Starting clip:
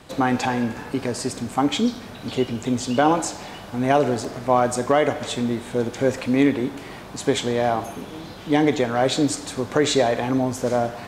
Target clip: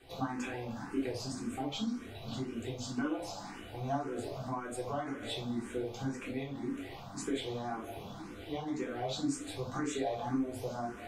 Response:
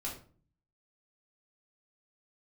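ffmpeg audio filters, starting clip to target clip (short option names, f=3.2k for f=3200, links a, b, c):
-filter_complex "[0:a]acompressor=threshold=-23dB:ratio=6[a];[1:a]atrim=start_sample=2205,afade=t=out:st=0.14:d=0.01,atrim=end_sample=6615[b];[a][b]afir=irnorm=-1:irlink=0,asplit=2[c][d];[d]afreqshift=1.9[e];[c][e]amix=inputs=2:normalize=1,volume=-7.5dB"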